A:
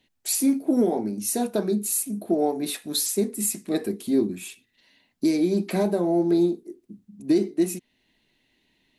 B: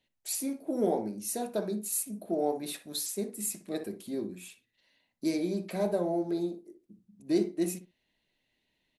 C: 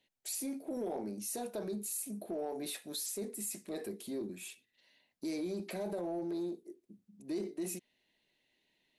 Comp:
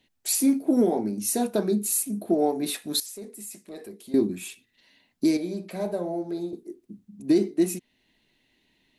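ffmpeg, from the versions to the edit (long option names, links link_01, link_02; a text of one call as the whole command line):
ffmpeg -i take0.wav -i take1.wav -i take2.wav -filter_complex "[0:a]asplit=3[link_01][link_02][link_03];[link_01]atrim=end=3.002[link_04];[2:a]atrim=start=2.998:end=4.142[link_05];[link_02]atrim=start=4.138:end=5.372[link_06];[1:a]atrim=start=5.368:end=6.532[link_07];[link_03]atrim=start=6.528[link_08];[link_04][link_05]acrossfade=duration=0.004:curve1=hsin:curve2=hsin[link_09];[link_09][link_06]acrossfade=duration=0.004:curve1=hsin:curve2=hsin[link_10];[link_10][link_07]acrossfade=duration=0.004:curve1=hsin:curve2=hsin[link_11];[link_11][link_08]acrossfade=duration=0.004:curve1=hsin:curve2=hsin" out.wav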